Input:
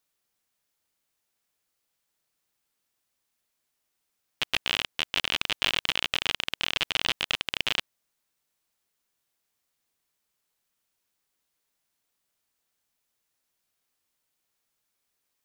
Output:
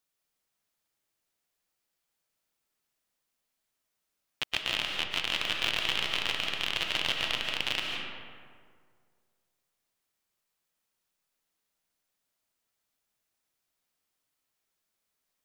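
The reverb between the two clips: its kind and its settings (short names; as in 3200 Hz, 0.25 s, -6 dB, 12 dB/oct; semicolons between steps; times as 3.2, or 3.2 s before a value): digital reverb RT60 2 s, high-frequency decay 0.5×, pre-delay 0.1 s, DRR 0.5 dB; gain -4.5 dB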